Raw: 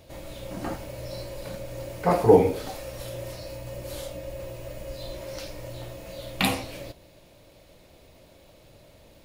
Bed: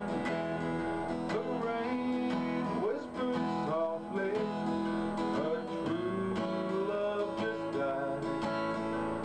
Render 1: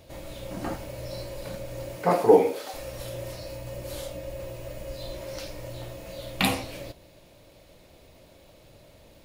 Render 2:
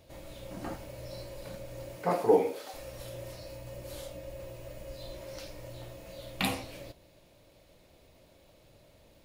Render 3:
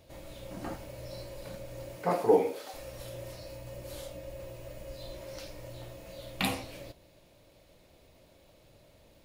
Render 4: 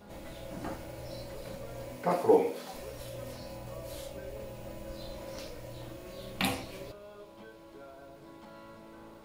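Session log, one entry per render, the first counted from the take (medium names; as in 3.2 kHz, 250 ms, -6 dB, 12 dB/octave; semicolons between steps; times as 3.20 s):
1.95–2.73 s: high-pass 130 Hz -> 540 Hz
trim -6.5 dB
no audible change
add bed -17 dB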